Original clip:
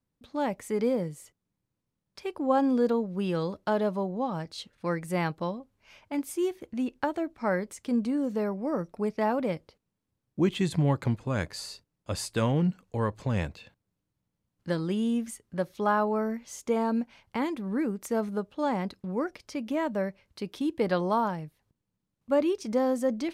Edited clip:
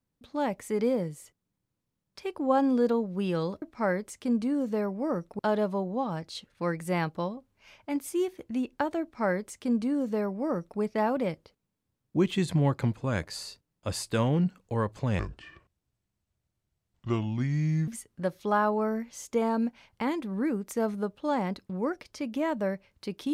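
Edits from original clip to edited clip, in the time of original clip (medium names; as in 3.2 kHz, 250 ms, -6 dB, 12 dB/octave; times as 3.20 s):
7.25–9.02 s: copy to 3.62 s
13.42–15.22 s: speed 67%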